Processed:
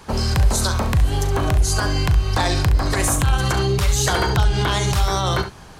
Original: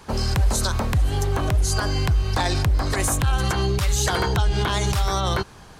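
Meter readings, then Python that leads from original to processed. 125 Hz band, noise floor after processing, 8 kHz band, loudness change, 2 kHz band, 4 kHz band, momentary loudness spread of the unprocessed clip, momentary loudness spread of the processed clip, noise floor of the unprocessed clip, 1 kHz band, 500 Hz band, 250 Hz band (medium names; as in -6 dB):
+3.0 dB, -41 dBFS, +3.0 dB, +3.0 dB, +3.0 dB, +3.0 dB, 2 LU, 2 LU, -45 dBFS, +3.0 dB, +3.0 dB, +3.0 dB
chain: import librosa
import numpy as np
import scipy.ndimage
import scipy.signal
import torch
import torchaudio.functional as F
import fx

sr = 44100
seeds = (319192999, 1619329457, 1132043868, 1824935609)

y = fx.room_early_taps(x, sr, ms=(38, 68), db=(-12.0, -10.5))
y = y * librosa.db_to_amplitude(2.5)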